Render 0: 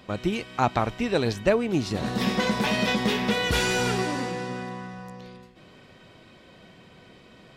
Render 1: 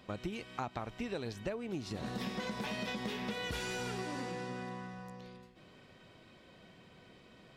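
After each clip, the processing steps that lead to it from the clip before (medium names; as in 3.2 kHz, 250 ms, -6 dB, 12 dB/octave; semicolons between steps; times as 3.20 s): compression 6:1, threshold -28 dBFS, peak gain reduction 12 dB; trim -7.5 dB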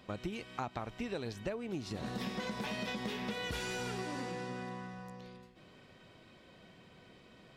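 no audible change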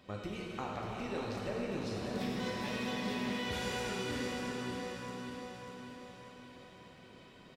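feedback delay 593 ms, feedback 51%, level -6 dB; plate-style reverb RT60 2.7 s, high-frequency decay 0.85×, DRR -2.5 dB; trim -3.5 dB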